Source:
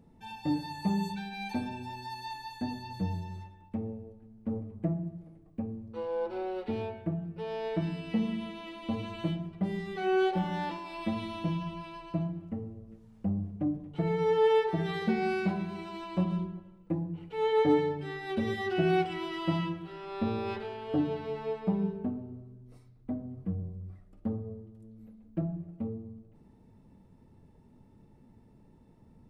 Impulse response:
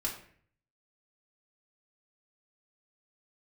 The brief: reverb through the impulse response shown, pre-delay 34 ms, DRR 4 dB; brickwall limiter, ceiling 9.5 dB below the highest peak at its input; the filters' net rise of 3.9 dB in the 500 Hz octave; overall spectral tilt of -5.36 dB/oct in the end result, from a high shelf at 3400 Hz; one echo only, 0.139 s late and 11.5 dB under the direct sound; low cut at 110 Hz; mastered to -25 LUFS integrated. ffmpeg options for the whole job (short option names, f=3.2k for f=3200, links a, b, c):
-filter_complex "[0:a]highpass=110,equalizer=f=500:t=o:g=5,highshelf=f=3.4k:g=-7.5,alimiter=limit=-21dB:level=0:latency=1,aecho=1:1:139:0.266,asplit=2[a][b];[1:a]atrim=start_sample=2205,adelay=34[c];[b][c]afir=irnorm=-1:irlink=0,volume=-7dB[d];[a][d]amix=inputs=2:normalize=0,volume=7dB"